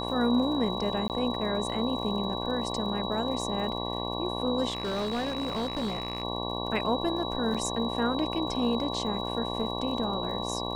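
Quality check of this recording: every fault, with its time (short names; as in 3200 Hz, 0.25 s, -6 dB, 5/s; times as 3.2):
buzz 60 Hz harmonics 19 -34 dBFS
crackle 77/s -40 dBFS
tone 3900 Hz -36 dBFS
1.08–1.1 gap 18 ms
4.7–6.23 clipped -26.5 dBFS
7.54–7.55 gap 6.1 ms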